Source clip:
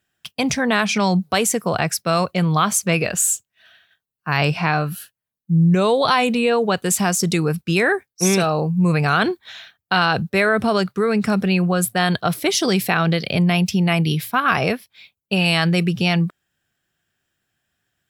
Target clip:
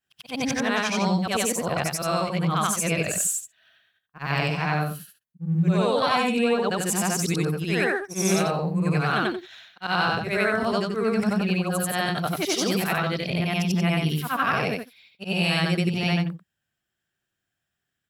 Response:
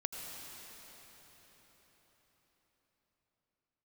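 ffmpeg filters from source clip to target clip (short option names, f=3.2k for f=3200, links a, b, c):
-filter_complex "[0:a]afftfilt=real='re':imag='-im':win_size=8192:overlap=0.75,asplit=2[a][b];[b]aeval=exprs='sgn(val(0))*max(abs(val(0))-0.0126,0)':c=same,volume=-8.5dB[c];[a][c]amix=inputs=2:normalize=0,volume=-3.5dB"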